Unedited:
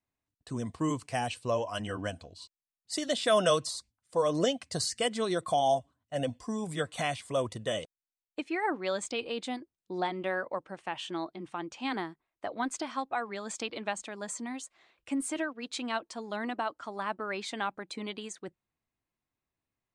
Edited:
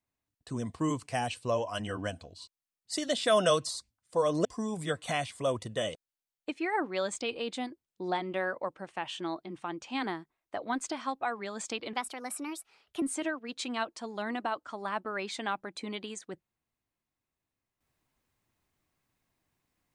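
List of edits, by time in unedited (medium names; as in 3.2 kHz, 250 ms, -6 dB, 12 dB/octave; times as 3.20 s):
4.45–6.35 s: delete
13.83–15.16 s: speed 122%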